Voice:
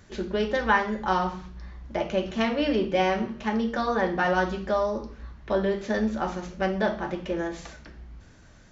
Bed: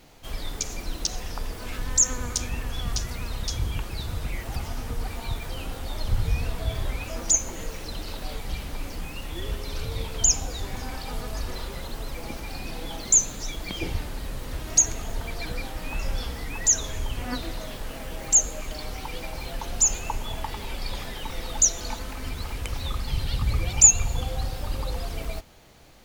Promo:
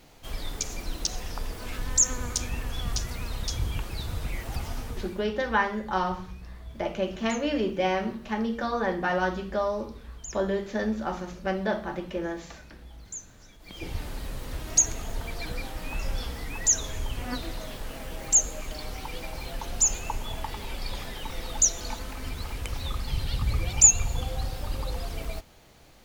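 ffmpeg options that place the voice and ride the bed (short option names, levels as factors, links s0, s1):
-filter_complex "[0:a]adelay=4850,volume=0.75[s0];[1:a]volume=7.5,afade=t=out:st=4.77:d=0.49:silence=0.105925,afade=t=in:st=13.58:d=0.5:silence=0.112202[s1];[s0][s1]amix=inputs=2:normalize=0"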